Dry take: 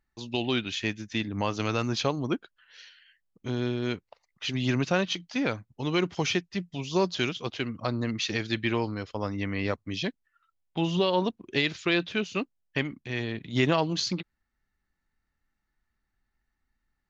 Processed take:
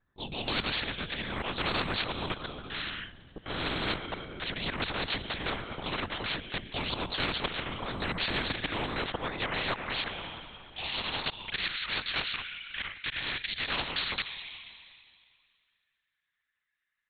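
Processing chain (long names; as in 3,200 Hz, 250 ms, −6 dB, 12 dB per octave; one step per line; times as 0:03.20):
parametric band 2,600 Hz −7.5 dB 0.56 octaves
noise gate with hold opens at −49 dBFS
volume swells 313 ms
high-pass filter sweep 76 Hz → 2,300 Hz, 0:07.59–0:10.58
on a send at −21.5 dB: convolution reverb RT60 2.2 s, pre-delay 46 ms
on the sum: frequency shifter −55 Hz
linear-prediction vocoder at 8 kHz whisper
every bin compressed towards the loudest bin 4 to 1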